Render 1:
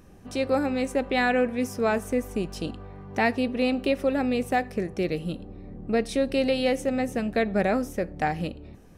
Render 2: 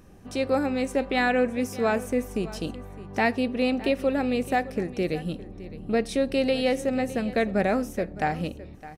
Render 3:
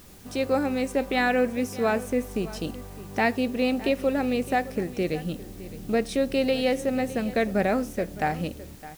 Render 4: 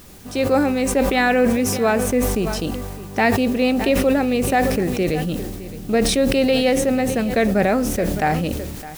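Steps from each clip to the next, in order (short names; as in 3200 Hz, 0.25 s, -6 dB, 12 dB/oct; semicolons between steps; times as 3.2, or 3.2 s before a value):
echo 0.612 s -17 dB
added noise white -53 dBFS
sustainer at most 33 dB/s; gain +5.5 dB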